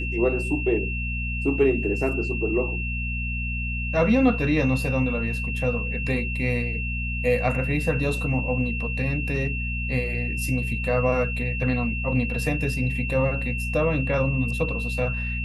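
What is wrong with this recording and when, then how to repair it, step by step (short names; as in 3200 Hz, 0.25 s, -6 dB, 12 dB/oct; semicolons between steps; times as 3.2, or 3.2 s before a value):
hum 60 Hz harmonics 4 -29 dBFS
tone 2700 Hz -30 dBFS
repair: notch 2700 Hz, Q 30; de-hum 60 Hz, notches 4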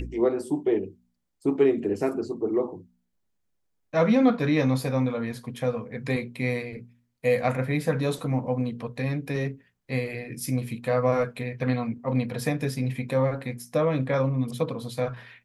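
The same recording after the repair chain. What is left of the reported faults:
none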